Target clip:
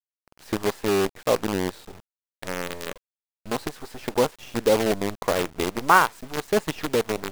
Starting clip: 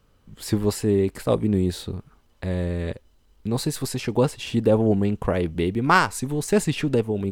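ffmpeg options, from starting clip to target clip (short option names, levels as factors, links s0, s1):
-af "bandpass=f=870:t=q:w=0.73:csg=0,acrusher=bits=5:dc=4:mix=0:aa=0.000001,volume=1.33"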